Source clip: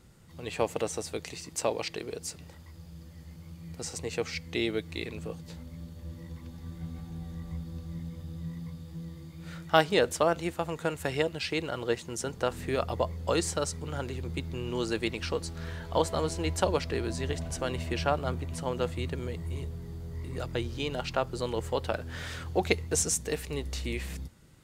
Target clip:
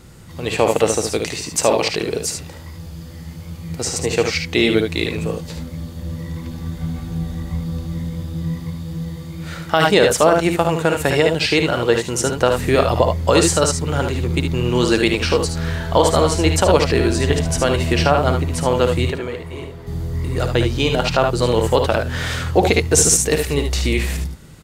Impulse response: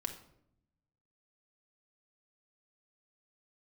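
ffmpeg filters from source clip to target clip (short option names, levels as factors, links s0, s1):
-filter_complex "[0:a]asettb=1/sr,asplit=3[s0][s1][s2];[s0]atrim=end=19.114[s3];[s1]atrim=start=19.11:end=19.87,asetpts=PTS-STARTPTS,afade=t=in:d=0.004:c=qsin,afade=t=out:st=0.756:d=0.004:c=qsin,bass=f=250:g=-14,treble=f=4000:g=-11[s4];[s2]atrim=start=19.866[s5];[s3][s4]acrossfade=d=0.004:c1=hsin:c2=qsin[s6];[s6][s5]acrossfade=d=0.004:c1=qsin:c2=hsin,asplit=2[s7][s8];[s8]aecho=0:1:56|74:0.335|0.447[s9];[s7][s9]amix=inputs=2:normalize=0,alimiter=level_in=5.62:limit=0.891:release=50:level=0:latency=1,volume=0.891"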